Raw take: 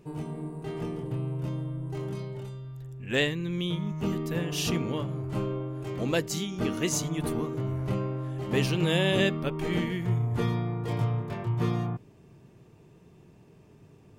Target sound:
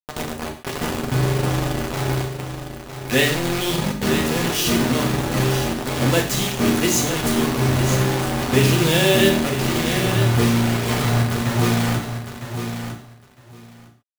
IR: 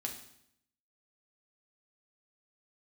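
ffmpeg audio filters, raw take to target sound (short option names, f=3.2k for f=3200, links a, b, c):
-filter_complex "[0:a]asettb=1/sr,asplit=3[a][b][c];[a]atrim=end=9.364[d];[b]atrim=start=9.36:end=9.86,asetpts=PTS-STARTPTS,afade=t=in:d=0.004:c=qsin,afade=t=out:st=0.496:d=0.004:c=qsin,acompressor=threshold=-29dB:ratio=6[e];[c]atrim=start=9.856[f];[d][e]acrossfade=d=0.004:c1=hsin:c2=qsin[g];[g][f]acrossfade=d=0.004:c1=qsin:c2=hsin,acrusher=bits=4:mix=0:aa=0.000001,aecho=1:1:957|1914:0.355|0.0568[h];[1:a]atrim=start_sample=2205,afade=t=out:st=0.2:d=0.01,atrim=end_sample=9261[i];[h][i]afir=irnorm=-1:irlink=0,volume=8.5dB"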